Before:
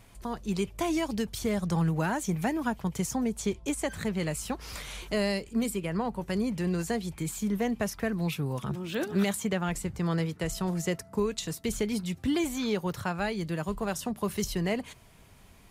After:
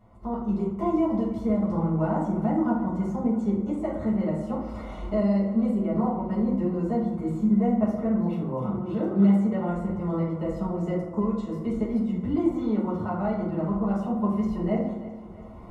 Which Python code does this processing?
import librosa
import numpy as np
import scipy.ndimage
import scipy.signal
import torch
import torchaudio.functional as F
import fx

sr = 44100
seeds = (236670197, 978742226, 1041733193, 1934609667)

y = fx.recorder_agc(x, sr, target_db=-21.5, rise_db_per_s=13.0, max_gain_db=30)
y = scipy.signal.savgol_filter(y, 65, 4, mode='constant')
y = fx.low_shelf(y, sr, hz=400.0, db=-5.0)
y = fx.echo_feedback(y, sr, ms=331, feedback_pct=54, wet_db=-16.0)
y = fx.rev_fdn(y, sr, rt60_s=0.87, lf_ratio=1.25, hf_ratio=0.5, size_ms=28.0, drr_db=-7.0)
y = y * 10.0 ** (-3.5 / 20.0)